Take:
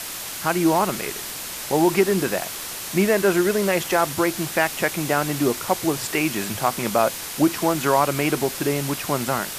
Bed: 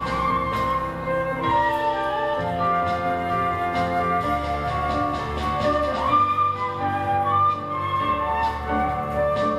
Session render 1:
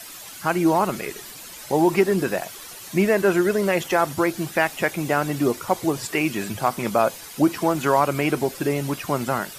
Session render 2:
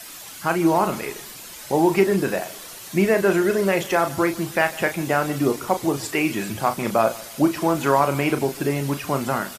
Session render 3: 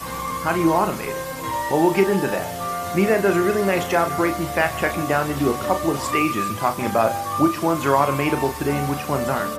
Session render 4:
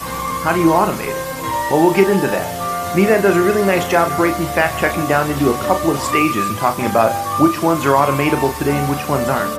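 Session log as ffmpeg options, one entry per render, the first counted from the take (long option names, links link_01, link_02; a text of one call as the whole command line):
ffmpeg -i in.wav -af "afftdn=noise_reduction=11:noise_floor=-33" out.wav
ffmpeg -i in.wav -filter_complex "[0:a]asplit=2[link_01][link_02];[link_02]adelay=36,volume=-9dB[link_03];[link_01][link_03]amix=inputs=2:normalize=0,aecho=1:1:150|300|450:0.0944|0.0359|0.0136" out.wav
ffmpeg -i in.wav -i bed.wav -filter_complex "[1:a]volume=-5.5dB[link_01];[0:a][link_01]amix=inputs=2:normalize=0" out.wav
ffmpeg -i in.wav -af "volume=5dB,alimiter=limit=-1dB:level=0:latency=1" out.wav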